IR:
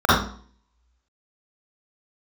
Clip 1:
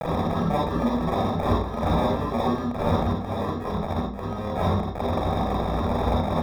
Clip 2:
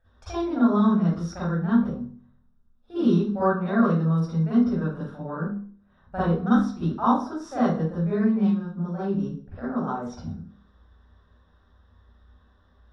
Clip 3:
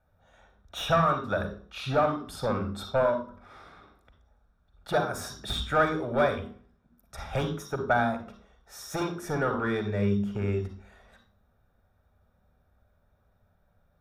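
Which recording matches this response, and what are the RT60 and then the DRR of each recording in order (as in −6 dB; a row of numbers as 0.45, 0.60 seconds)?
2; 0.50, 0.50, 0.50 seconds; −3.0, −11.0, 6.0 decibels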